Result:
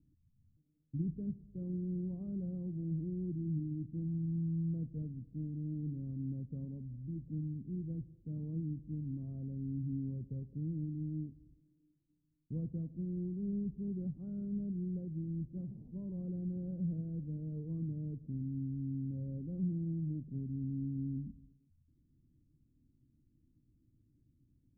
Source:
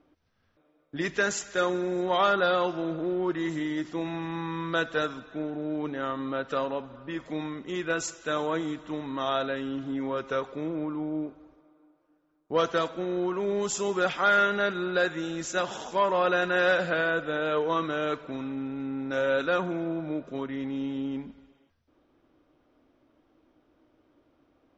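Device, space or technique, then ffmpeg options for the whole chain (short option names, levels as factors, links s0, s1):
the neighbour's flat through the wall: -af "lowpass=f=190:w=0.5412,lowpass=f=190:w=1.3066,equalizer=f=120:t=o:w=0.64:g=5,volume=1.5"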